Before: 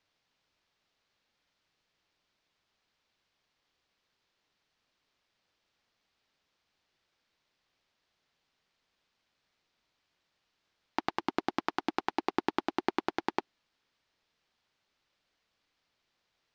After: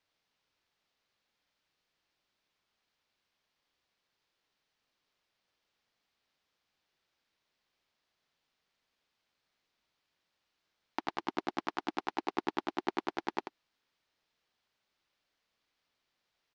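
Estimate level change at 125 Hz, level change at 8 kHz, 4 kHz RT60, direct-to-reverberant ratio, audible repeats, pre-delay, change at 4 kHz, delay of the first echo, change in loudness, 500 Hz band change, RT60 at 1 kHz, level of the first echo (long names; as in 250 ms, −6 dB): −4.5 dB, can't be measured, no reverb audible, no reverb audible, 1, no reverb audible, −3.0 dB, 86 ms, −3.0 dB, −3.5 dB, no reverb audible, −8.0 dB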